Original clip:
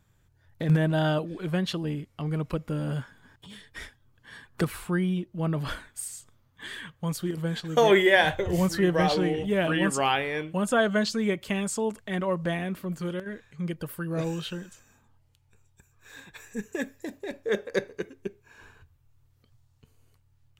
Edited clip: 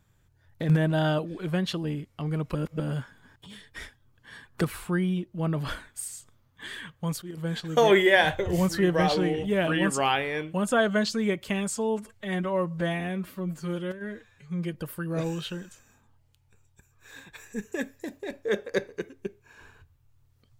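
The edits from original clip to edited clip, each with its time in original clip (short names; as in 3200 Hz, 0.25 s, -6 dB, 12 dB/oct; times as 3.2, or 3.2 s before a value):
2.55–2.8 reverse
7.22–7.52 fade in, from -15 dB
11.76–13.75 stretch 1.5×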